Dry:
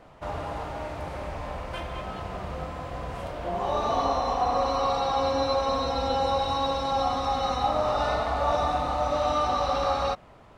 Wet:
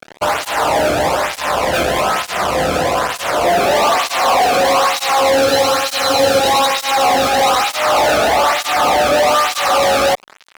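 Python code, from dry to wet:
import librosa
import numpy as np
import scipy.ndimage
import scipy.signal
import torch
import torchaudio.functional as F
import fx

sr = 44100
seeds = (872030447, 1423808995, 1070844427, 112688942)

y = fx.fuzz(x, sr, gain_db=44.0, gate_db=-45.0)
y = fx.spec_freeze(y, sr, seeds[0], at_s=5.48, hold_s=0.92)
y = fx.flanger_cancel(y, sr, hz=1.1, depth_ms=1.1)
y = y * 10.0 ** (3.5 / 20.0)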